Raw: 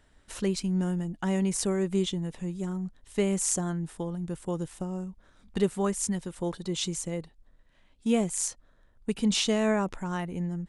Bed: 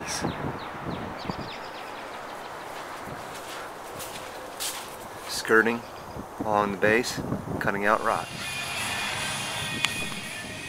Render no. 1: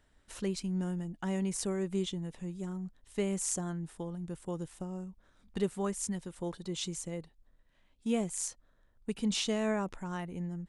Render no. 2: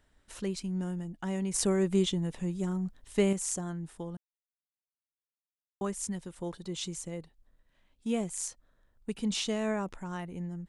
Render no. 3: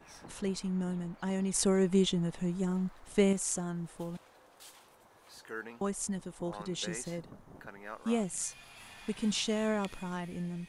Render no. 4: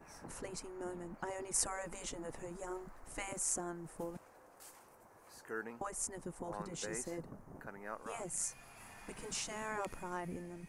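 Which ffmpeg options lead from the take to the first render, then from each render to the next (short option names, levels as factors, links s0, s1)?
-af "volume=0.501"
-filter_complex "[0:a]asettb=1/sr,asplit=3[s0][s1][s2];[s0]atrim=end=1.544[s3];[s1]atrim=start=1.54:end=3.33,asetpts=PTS-STARTPTS,afade=t=in:d=0.004:c=qsin,afade=t=out:st=1.786:d=0.004:c=qsin,acontrast=64[s4];[s2]atrim=start=3.326[s5];[s3][s4]acrossfade=d=0.004:c1=hsin:c2=qsin[s6];[s6][s5]acrossfade=d=0.004:c1=qsin:c2=hsin,asplit=3[s7][s8][s9];[s7]atrim=end=4.17,asetpts=PTS-STARTPTS,afade=t=out:st=4.166:d=0.004:c=hsin[s10];[s8]atrim=start=4.17:end=5.81,asetpts=PTS-STARTPTS,volume=0[s11];[s9]atrim=start=5.81,asetpts=PTS-STARTPTS,afade=t=in:d=0.004:c=hsin[s12];[s10][s11][s12]concat=n=3:v=0:a=1"
-filter_complex "[1:a]volume=0.0794[s0];[0:a][s0]amix=inputs=2:normalize=0"
-af "afftfilt=real='re*lt(hypot(re,im),0.112)':imag='im*lt(hypot(re,im),0.112)':win_size=1024:overlap=0.75,equalizer=f=3500:w=1.6:g=-15"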